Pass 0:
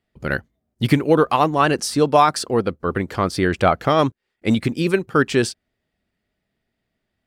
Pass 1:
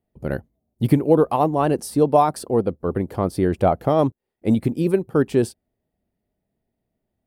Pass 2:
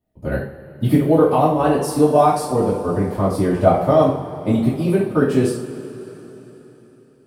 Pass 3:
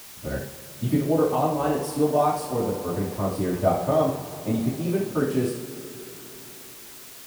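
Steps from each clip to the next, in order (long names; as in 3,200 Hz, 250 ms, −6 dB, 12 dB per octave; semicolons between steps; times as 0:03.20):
flat-topped bell 3,000 Hz −13 dB 3 octaves
coupled-rooms reverb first 0.46 s, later 4 s, from −19 dB, DRR −9.5 dB; level −6 dB
bit-depth reduction 6 bits, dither triangular; level −7.5 dB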